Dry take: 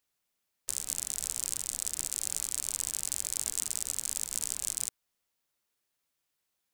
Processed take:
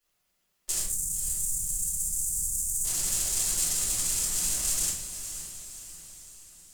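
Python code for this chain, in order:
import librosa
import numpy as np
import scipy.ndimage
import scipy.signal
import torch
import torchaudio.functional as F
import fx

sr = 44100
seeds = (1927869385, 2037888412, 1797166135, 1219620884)

y = fx.cheby2_bandstop(x, sr, low_hz=470.0, high_hz=2700.0, order=4, stop_db=60, at=(0.81, 2.84))
y = fx.echo_diffused(y, sr, ms=539, feedback_pct=51, wet_db=-10.0)
y = fx.room_shoebox(y, sr, seeds[0], volume_m3=71.0, walls='mixed', distance_m=3.1)
y = F.gain(torch.from_numpy(y), -5.0).numpy()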